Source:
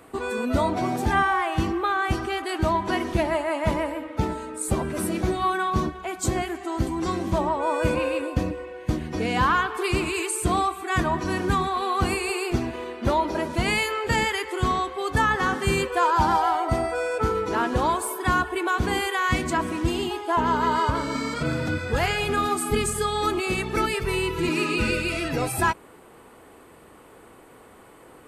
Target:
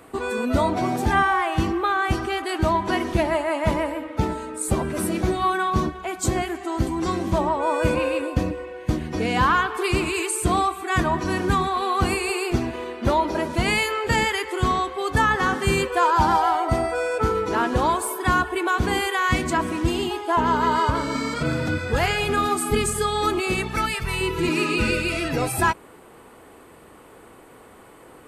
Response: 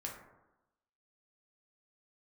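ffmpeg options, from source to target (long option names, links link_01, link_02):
-filter_complex "[0:a]asettb=1/sr,asplit=3[link_01][link_02][link_03];[link_01]atrim=end=23.674[link_04];[link_02]atrim=start=23.67:end=24.21,asetpts=PTS-STARTPTS,afade=type=in:duration=0.004:curve=qsin,afade=type=out:start_time=0.536:duration=0.004:curve=qsin,equalizer=frequency=390:width_type=o:width=0.7:gain=-12.5[link_05];[link_03]atrim=start=24.206[link_06];[link_04][link_05]acrossfade=duration=0.004:curve1=hsin:curve2=qsin[link_07];[link_07][link_06]acrossfade=duration=0.004:curve1=qsin:curve2=hsin,volume=2dB"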